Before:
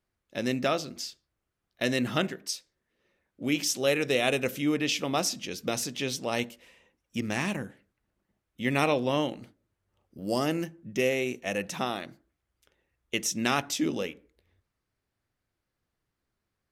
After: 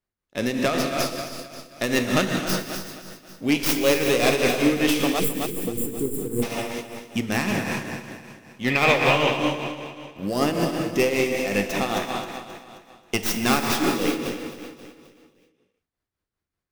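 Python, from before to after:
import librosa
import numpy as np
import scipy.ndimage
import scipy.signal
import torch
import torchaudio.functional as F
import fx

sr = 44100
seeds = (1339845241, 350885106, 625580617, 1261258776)

p1 = fx.tracing_dist(x, sr, depth_ms=0.16)
p2 = fx.rev_gated(p1, sr, seeds[0], gate_ms=420, shape='flat', drr_db=2.5)
p3 = fx.spec_erase(p2, sr, start_s=5.2, length_s=1.23, low_hz=510.0, high_hz=7100.0)
p4 = fx.leveller(p3, sr, passes=2)
p5 = fx.graphic_eq_15(p4, sr, hz=(250, 1000, 2500, 10000), db=(-6, 4, 9, -7), at=(8.7, 9.39))
p6 = p5 + fx.echo_feedback(p5, sr, ms=266, feedback_pct=45, wet_db=-9, dry=0)
y = fx.tremolo_shape(p6, sr, shape='triangle', hz=5.2, depth_pct=60)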